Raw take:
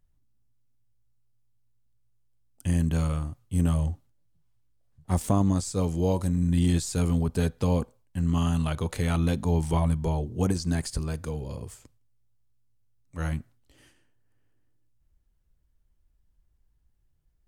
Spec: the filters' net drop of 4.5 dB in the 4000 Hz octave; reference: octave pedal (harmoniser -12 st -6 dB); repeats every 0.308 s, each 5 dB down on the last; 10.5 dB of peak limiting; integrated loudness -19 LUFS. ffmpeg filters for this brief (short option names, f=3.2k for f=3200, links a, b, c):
-filter_complex "[0:a]equalizer=f=4k:t=o:g=-6,alimiter=limit=-23.5dB:level=0:latency=1,aecho=1:1:308|616|924|1232|1540|1848|2156:0.562|0.315|0.176|0.0988|0.0553|0.031|0.0173,asplit=2[a][b];[b]asetrate=22050,aresample=44100,atempo=2,volume=-6dB[c];[a][c]amix=inputs=2:normalize=0,volume=12dB"